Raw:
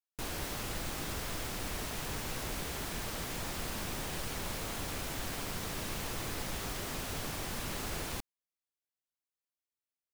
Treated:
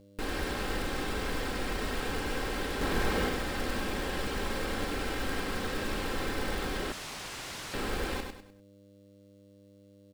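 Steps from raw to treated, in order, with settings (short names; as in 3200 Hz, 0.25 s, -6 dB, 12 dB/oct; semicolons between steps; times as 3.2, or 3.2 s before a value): 2.81–3.29 half-waves squared off; thirty-one-band EQ 400 Hz +12 dB, 1600 Hz +5 dB, 6300 Hz -7 dB; in parallel at +1 dB: limiter -34.5 dBFS, peak gain reduction 11 dB; on the sum: feedback echo 0.1 s, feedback 34%, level -5.5 dB; buzz 100 Hz, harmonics 6, -56 dBFS -3 dB/oct; comb 3.8 ms, depth 52%; 6.92–7.74 wrapped overs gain 30.5 dB; air absorption 65 m; short-mantissa float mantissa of 2-bit; gain -1 dB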